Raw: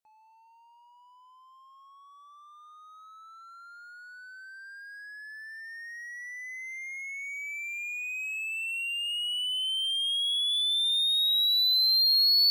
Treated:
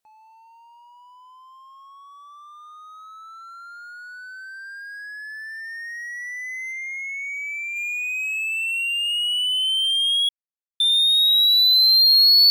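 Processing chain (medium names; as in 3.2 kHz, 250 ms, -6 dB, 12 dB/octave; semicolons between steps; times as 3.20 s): 6.71–7.75 s: treble shelf 8.3 kHz -> 5.3 kHz -10.5 dB; 10.29–10.80 s: mute; trim +8.5 dB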